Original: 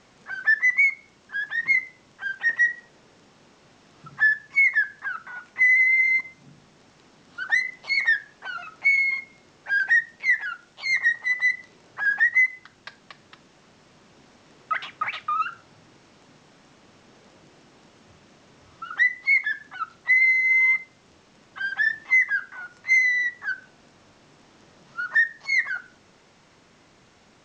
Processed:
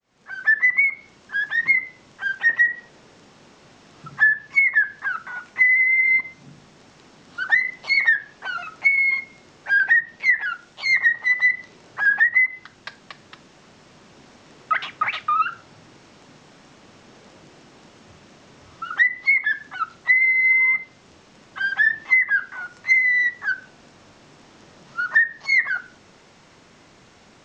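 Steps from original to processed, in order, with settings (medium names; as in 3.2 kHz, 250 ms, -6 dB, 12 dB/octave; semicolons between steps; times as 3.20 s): fade-in on the opening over 0.64 s; low-pass that closes with the level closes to 1.8 kHz, closed at -16 dBFS; trim +5 dB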